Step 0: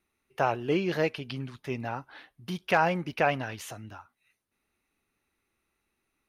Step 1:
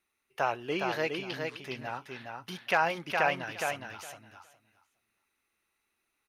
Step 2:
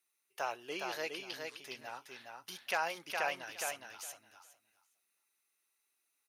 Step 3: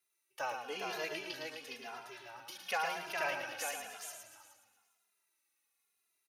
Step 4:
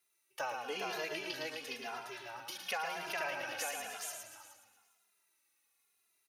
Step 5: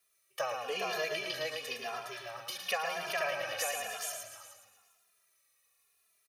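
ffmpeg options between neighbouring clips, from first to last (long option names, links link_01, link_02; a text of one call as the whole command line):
ffmpeg -i in.wav -filter_complex "[0:a]lowshelf=frequency=450:gain=-11.5,asplit=2[link_01][link_02];[link_02]aecho=0:1:413|826|1239:0.596|0.0893|0.0134[link_03];[link_01][link_03]amix=inputs=2:normalize=0" out.wav
ffmpeg -i in.wav -af "bass=frequency=250:gain=-13,treble=frequency=4000:gain=12,volume=-8dB" out.wav
ffmpeg -i in.wav -filter_complex "[0:a]aecho=1:1:111|231|307:0.501|0.2|0.133,asplit=2[link_01][link_02];[link_02]adelay=2.5,afreqshift=-0.98[link_03];[link_01][link_03]amix=inputs=2:normalize=1,volume=2dB" out.wav
ffmpeg -i in.wav -af "acompressor=threshold=-40dB:ratio=3,volume=4dB" out.wav
ffmpeg -i in.wav -af "aecho=1:1:1.7:0.68,volume=2.5dB" out.wav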